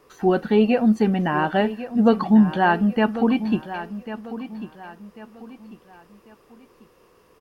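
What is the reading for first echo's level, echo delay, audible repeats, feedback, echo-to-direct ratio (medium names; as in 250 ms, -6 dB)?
-13.0 dB, 1095 ms, 3, 35%, -12.5 dB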